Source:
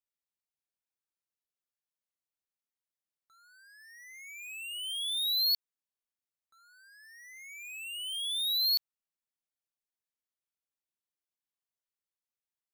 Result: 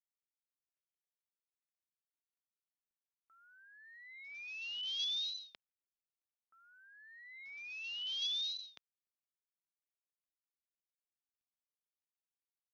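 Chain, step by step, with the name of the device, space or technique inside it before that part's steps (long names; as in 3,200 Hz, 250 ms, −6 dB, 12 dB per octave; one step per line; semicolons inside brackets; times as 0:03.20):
0:03.65–0:04.31: high-shelf EQ 5,000 Hz −5 dB
Bluetooth headset (high-pass filter 150 Hz 12 dB per octave; automatic gain control gain up to 5 dB; downsampling to 8,000 Hz; level −7.5 dB; SBC 64 kbit/s 48,000 Hz)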